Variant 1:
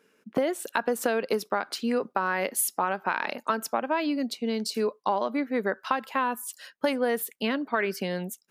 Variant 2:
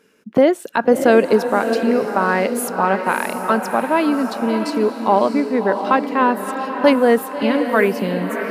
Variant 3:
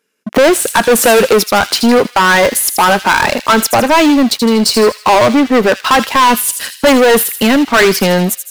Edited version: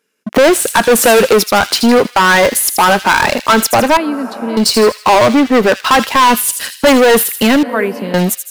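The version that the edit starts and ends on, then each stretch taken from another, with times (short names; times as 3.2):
3
3.97–4.57 from 2
7.63–8.14 from 2
not used: 1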